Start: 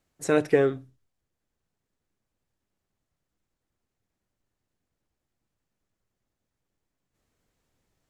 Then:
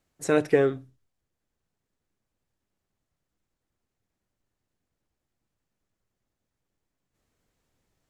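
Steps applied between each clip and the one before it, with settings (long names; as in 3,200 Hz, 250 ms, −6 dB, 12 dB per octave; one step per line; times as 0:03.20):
no processing that can be heard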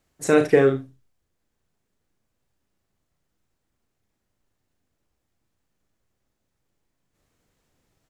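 ambience of single reflections 37 ms −6.5 dB, 75 ms −13.5 dB
level +4 dB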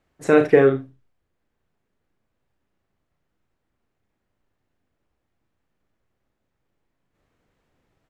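bass and treble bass −2 dB, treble −13 dB
level +2.5 dB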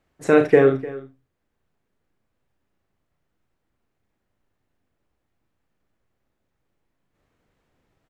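single-tap delay 301 ms −18 dB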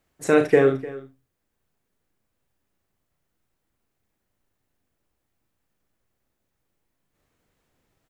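high-shelf EQ 5,200 Hz +11.5 dB
level −2.5 dB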